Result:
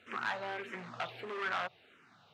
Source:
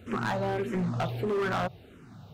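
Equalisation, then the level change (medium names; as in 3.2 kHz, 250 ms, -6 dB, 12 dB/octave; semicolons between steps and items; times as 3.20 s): band-pass filter 2.2 kHz, Q 0.91; 0.0 dB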